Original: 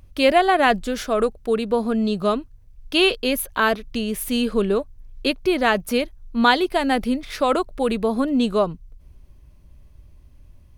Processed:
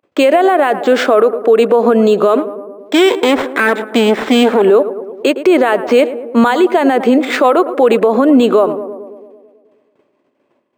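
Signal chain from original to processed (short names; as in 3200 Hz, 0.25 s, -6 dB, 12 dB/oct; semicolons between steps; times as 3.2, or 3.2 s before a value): 2.37–4.62 minimum comb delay 0.54 ms; expander -35 dBFS; HPF 320 Hz 24 dB/oct; compressor 6:1, threshold -22 dBFS, peak gain reduction 12 dB; tape spacing loss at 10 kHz 27 dB; tape echo 0.109 s, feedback 73%, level -16.5 dB, low-pass 1200 Hz; maximiser +25.5 dB; decimation joined by straight lines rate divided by 4×; gain -1 dB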